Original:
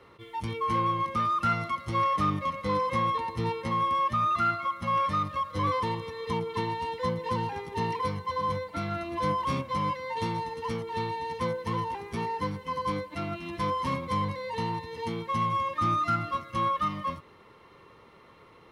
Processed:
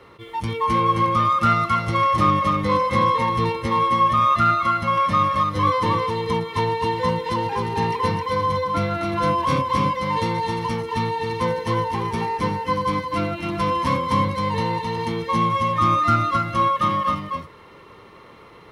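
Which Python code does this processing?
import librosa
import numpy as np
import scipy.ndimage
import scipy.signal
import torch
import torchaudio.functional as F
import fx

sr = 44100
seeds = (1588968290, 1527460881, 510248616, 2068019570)

y = x + 10.0 ** (-3.0 / 20.0) * np.pad(x, (int(265 * sr / 1000.0), 0))[:len(x)]
y = y * 10.0 ** (7.0 / 20.0)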